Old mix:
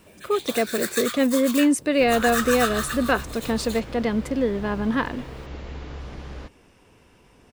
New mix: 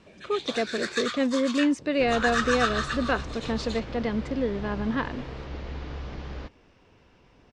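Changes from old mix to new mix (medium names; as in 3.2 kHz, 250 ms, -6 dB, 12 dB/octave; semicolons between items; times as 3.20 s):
speech -4.5 dB; master: add low-pass 5.9 kHz 24 dB/octave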